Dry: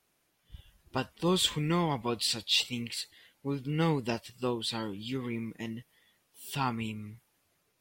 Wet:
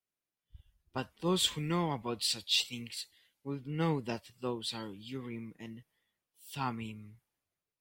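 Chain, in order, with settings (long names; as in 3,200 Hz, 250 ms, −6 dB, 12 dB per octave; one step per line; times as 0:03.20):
multiband upward and downward expander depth 40%
level −5 dB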